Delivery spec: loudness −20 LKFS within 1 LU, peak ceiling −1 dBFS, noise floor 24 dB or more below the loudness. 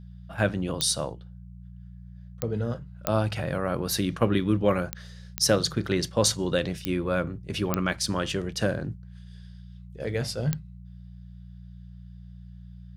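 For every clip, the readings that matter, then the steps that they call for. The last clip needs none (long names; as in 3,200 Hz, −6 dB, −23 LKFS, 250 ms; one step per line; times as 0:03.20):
number of clicks 8; mains hum 60 Hz; hum harmonics up to 180 Hz; level of the hum −41 dBFS; integrated loudness −27.5 LKFS; sample peak −6.5 dBFS; target loudness −20.0 LKFS
→ click removal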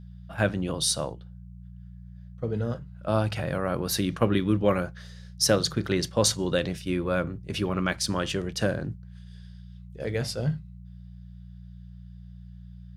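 number of clicks 0; mains hum 60 Hz; hum harmonics up to 180 Hz; level of the hum −41 dBFS
→ hum removal 60 Hz, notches 3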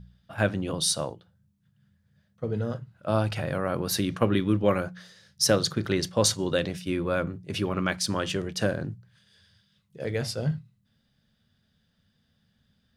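mains hum none found; integrated loudness −27.5 LKFS; sample peak −6.5 dBFS; target loudness −20.0 LKFS
→ level +7.5 dB
brickwall limiter −1 dBFS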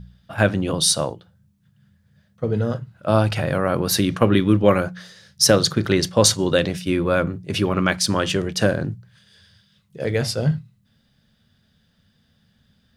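integrated loudness −20.5 LKFS; sample peak −1.0 dBFS; background noise floor −63 dBFS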